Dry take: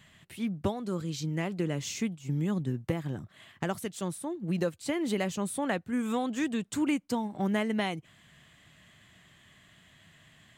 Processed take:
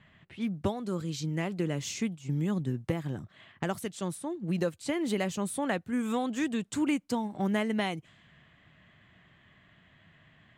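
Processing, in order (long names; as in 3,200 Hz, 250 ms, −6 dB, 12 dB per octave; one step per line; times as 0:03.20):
low-pass that shuts in the quiet parts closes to 2,200 Hz, open at −30.5 dBFS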